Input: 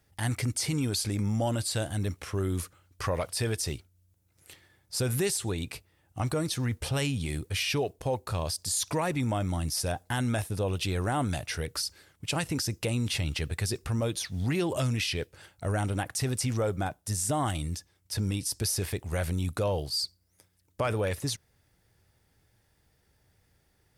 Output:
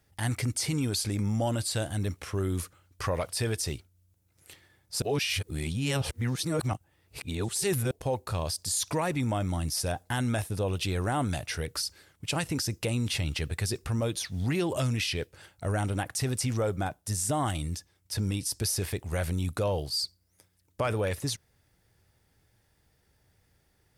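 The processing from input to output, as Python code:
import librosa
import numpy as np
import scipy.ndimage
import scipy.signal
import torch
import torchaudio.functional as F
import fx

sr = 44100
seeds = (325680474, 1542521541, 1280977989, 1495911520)

y = fx.edit(x, sr, fx.reverse_span(start_s=5.02, length_s=2.89), tone=tone)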